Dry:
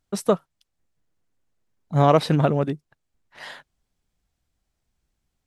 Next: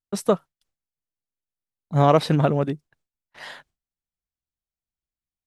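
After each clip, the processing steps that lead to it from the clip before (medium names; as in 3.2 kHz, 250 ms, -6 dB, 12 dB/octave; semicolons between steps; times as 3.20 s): gate with hold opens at -46 dBFS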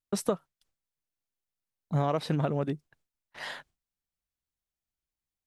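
compression 5:1, threshold -25 dBFS, peak gain reduction 13 dB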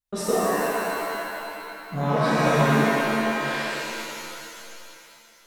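flange 0.43 Hz, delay 0.9 ms, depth 6 ms, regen +57%; pitch-shifted reverb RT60 2.7 s, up +7 st, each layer -2 dB, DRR -10.5 dB; trim +1 dB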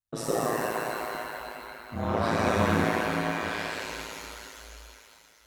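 ring modulator 55 Hz; trim -2 dB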